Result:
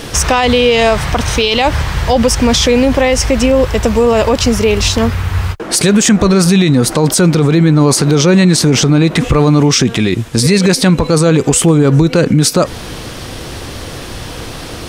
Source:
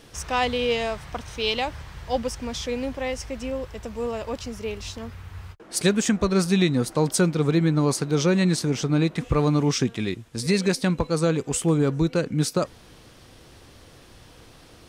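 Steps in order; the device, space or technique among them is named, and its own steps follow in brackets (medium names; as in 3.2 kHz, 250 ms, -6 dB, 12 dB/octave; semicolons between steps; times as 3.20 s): loud club master (compression 1.5:1, threshold -25 dBFS, peak gain reduction 4 dB; hard clipper -12.5 dBFS, distortion -47 dB; loudness maximiser +24.5 dB); trim -1 dB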